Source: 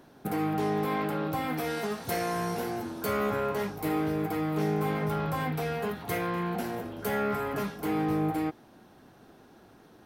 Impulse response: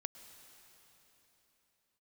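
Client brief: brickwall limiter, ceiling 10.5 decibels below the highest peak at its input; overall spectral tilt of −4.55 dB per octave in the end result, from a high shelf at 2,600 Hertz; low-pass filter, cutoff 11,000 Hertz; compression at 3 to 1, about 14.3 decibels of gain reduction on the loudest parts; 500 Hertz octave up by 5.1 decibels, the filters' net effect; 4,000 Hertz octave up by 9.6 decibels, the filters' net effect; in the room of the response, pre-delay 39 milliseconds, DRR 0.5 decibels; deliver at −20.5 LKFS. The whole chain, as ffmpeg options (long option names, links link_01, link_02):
-filter_complex "[0:a]lowpass=11000,equalizer=frequency=500:width_type=o:gain=6,highshelf=frequency=2600:gain=5.5,equalizer=frequency=4000:width_type=o:gain=7.5,acompressor=threshold=-42dB:ratio=3,alimiter=level_in=11.5dB:limit=-24dB:level=0:latency=1,volume=-11.5dB,asplit=2[link_01][link_02];[1:a]atrim=start_sample=2205,adelay=39[link_03];[link_02][link_03]afir=irnorm=-1:irlink=0,volume=2.5dB[link_04];[link_01][link_04]amix=inputs=2:normalize=0,volume=21dB"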